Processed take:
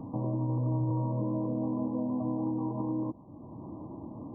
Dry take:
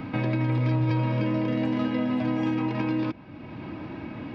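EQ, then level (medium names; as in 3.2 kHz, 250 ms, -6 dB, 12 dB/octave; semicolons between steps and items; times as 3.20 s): brick-wall FIR low-pass 1.2 kHz; -5.5 dB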